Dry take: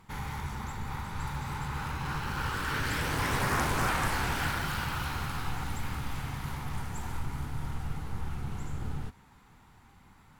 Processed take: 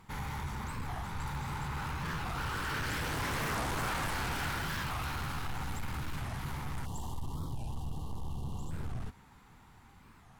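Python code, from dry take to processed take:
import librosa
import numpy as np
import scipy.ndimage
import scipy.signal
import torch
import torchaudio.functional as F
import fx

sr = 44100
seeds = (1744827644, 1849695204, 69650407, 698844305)

y = fx.spec_erase(x, sr, start_s=6.86, length_s=1.85, low_hz=1200.0, high_hz=2700.0)
y = 10.0 ** (-30.5 / 20.0) * np.tanh(y / 10.0 ** (-30.5 / 20.0))
y = fx.record_warp(y, sr, rpm=45.0, depth_cents=250.0)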